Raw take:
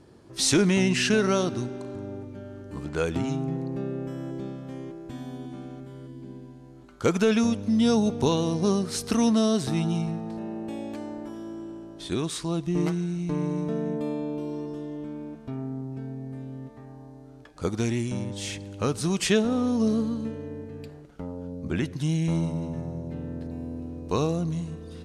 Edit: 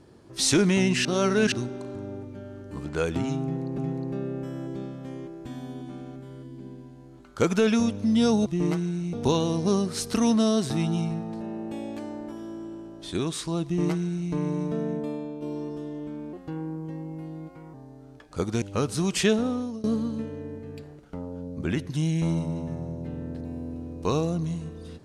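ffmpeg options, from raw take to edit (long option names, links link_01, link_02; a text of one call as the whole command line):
ffmpeg -i in.wav -filter_complex "[0:a]asplit=11[link_01][link_02][link_03][link_04][link_05][link_06][link_07][link_08][link_09][link_10][link_11];[link_01]atrim=end=1.052[link_12];[link_02]atrim=start=1.048:end=1.522,asetpts=PTS-STARTPTS,areverse[link_13];[link_03]atrim=start=1.518:end=3.782[link_14];[link_04]atrim=start=3.418:end=8.102[link_15];[link_05]atrim=start=12.608:end=13.282[link_16];[link_06]atrim=start=8.098:end=14.39,asetpts=PTS-STARTPTS,afade=type=out:start_time=5.742:duration=0.55:silence=0.473151[link_17];[link_07]atrim=start=14.39:end=15.304,asetpts=PTS-STARTPTS,afade=type=in:duration=0.004:curve=hsin:silence=0.473151[link_18];[link_08]atrim=start=15.3:end=16.99,asetpts=PTS-STARTPTS,asetrate=52920,aresample=44100[link_19];[link_09]atrim=start=16.986:end=17.872[link_20];[link_10]atrim=start=18.678:end=19.9,asetpts=PTS-STARTPTS,afade=type=out:start_time=0.772:duration=0.45:silence=0.0749894[link_21];[link_11]atrim=start=19.9,asetpts=PTS-STARTPTS,afade=type=in:duration=0.004:curve=hsin:silence=0.0749894[link_22];[link_12][link_13]acrossfade=duration=0.004:curve1=hsin:curve2=hsin[link_23];[link_23][link_14]acrossfade=duration=0.004:curve1=hsin:curve2=hsin[link_24];[link_24][link_15]acrossfade=duration=0.004:curve1=hsin:curve2=hsin[link_25];[link_25][link_16]acrossfade=duration=0.004:curve1=hsin:curve2=hsin[link_26];[link_17][link_18]concat=n=2:v=0:a=1[link_27];[link_26][link_27]acrossfade=duration=0.004:curve1=hsin:curve2=hsin[link_28];[link_28][link_19]acrossfade=duration=0.004:curve1=hsin:curve2=hsin[link_29];[link_29][link_20]acrossfade=duration=0.004:curve1=hsin:curve2=hsin[link_30];[link_21][link_22]concat=n=2:v=0:a=1[link_31];[link_30][link_31]acrossfade=duration=0.004:curve1=hsin:curve2=hsin" out.wav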